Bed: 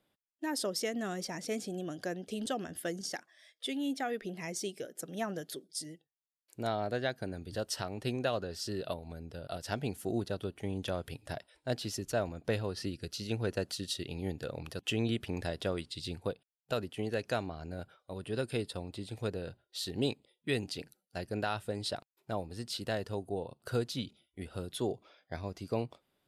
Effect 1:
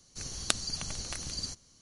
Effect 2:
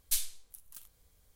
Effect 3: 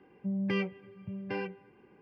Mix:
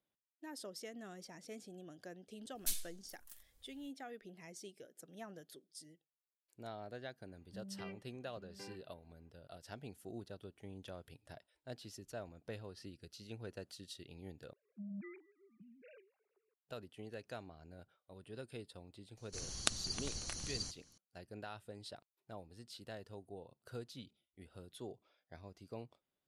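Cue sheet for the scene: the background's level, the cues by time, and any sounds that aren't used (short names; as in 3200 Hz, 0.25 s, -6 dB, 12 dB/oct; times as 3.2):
bed -14 dB
2.55 add 2 -7.5 dB + comb 3.6 ms, depth 40%
7.29 add 3 -18 dB
14.53 replace with 3 -17 dB + sine-wave speech
19.17 add 1 -5.5 dB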